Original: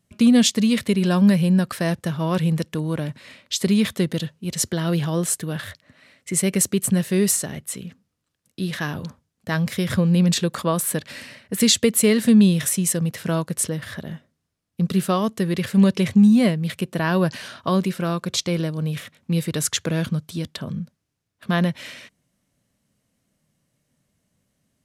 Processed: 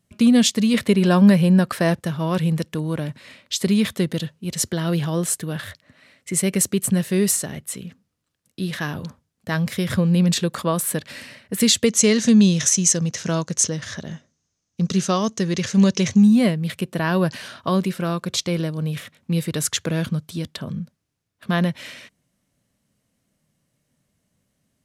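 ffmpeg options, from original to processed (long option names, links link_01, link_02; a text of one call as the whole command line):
ffmpeg -i in.wav -filter_complex "[0:a]asettb=1/sr,asplit=3[link_01][link_02][link_03];[link_01]atrim=end=0.744[link_04];[link_02]atrim=start=0.74:end=2,asetpts=PTS-STARTPTS,afade=type=in:duration=0.004:curve=qsin,afade=type=out:start_time=1.256:duration=0.004:curve=qsin,equalizer=frequency=700:width=0.3:gain=5[link_05];[link_03]atrim=start=1.996[link_06];[link_04][link_05]acrossfade=duration=0.004:curve1=hsin:curve2=qsin[link_07];[link_07][link_06]acrossfade=duration=0.004:curve1=qsin:curve2=hsin,asettb=1/sr,asplit=3[link_08][link_09][link_10];[link_08]atrim=end=11.864[link_11];[link_09]atrim=start=11.86:end=16.23,asetpts=PTS-STARTPTS,afade=type=in:duration=0.004:curve=qsin,afade=type=out:start_time=4.366:duration=0.004:curve=qsin,lowpass=frequency=6300:width_type=q:width=7.9[link_12];[link_10]atrim=start=16.226[link_13];[link_11][link_12]acrossfade=duration=0.004:curve1=hsin:curve2=qsin[link_14];[link_14][link_13]acrossfade=duration=0.004:curve1=qsin:curve2=hsin" out.wav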